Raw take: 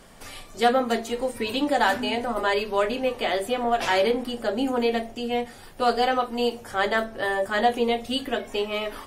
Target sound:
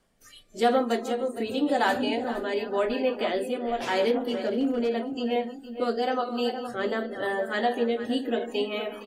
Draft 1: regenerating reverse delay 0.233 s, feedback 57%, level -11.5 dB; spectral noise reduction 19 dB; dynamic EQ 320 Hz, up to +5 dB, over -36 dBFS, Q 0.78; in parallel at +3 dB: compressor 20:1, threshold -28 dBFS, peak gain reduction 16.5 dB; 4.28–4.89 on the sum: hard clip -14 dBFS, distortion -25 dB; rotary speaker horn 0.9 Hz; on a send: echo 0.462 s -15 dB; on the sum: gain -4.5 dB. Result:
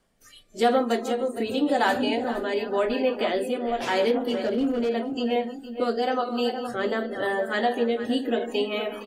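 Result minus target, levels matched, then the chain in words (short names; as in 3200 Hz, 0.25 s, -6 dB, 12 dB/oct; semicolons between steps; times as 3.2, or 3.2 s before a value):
compressor: peak gain reduction -10 dB
regenerating reverse delay 0.233 s, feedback 57%, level -11.5 dB; spectral noise reduction 19 dB; dynamic EQ 320 Hz, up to +5 dB, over -36 dBFS, Q 0.78; in parallel at +3 dB: compressor 20:1, threshold -38.5 dBFS, peak gain reduction 26.5 dB; 4.28–4.89 on the sum: hard clip -14 dBFS, distortion -29 dB; rotary speaker horn 0.9 Hz; on a send: echo 0.462 s -15 dB; on the sum: gain -4.5 dB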